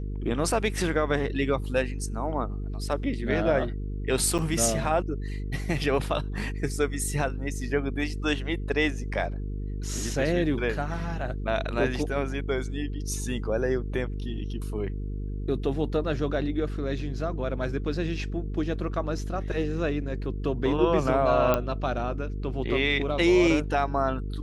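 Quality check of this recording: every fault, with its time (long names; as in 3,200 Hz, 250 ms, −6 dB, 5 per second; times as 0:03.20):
mains buzz 50 Hz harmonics 9 −32 dBFS
0:04.38–0:04.39: drop-out 7.8 ms
0:21.54: click −10 dBFS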